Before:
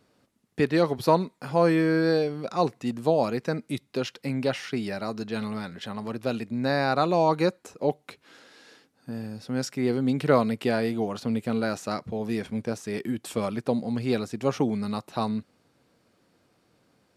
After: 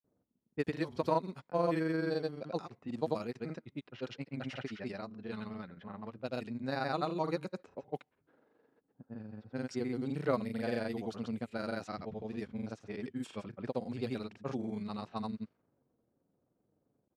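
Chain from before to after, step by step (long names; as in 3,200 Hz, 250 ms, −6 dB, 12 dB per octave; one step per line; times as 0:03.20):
granular cloud 77 ms, grains 23 per second, pitch spread up and down by 0 semitones
low-pass that shuts in the quiet parts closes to 650 Hz, open at −24 dBFS
level −9 dB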